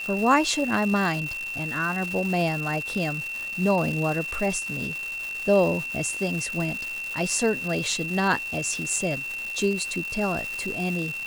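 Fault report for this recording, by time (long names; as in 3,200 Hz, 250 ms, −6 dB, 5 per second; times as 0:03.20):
surface crackle 520 per second −30 dBFS
whistle 2,700 Hz −30 dBFS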